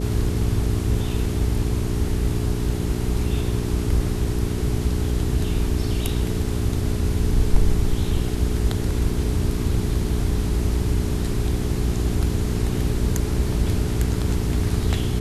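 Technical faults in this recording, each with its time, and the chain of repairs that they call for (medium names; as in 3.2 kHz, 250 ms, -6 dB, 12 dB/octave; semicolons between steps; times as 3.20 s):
hum 60 Hz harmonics 7 -26 dBFS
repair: de-hum 60 Hz, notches 7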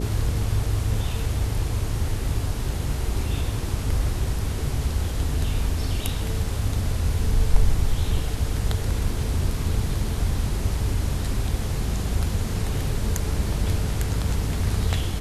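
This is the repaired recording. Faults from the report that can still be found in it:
nothing left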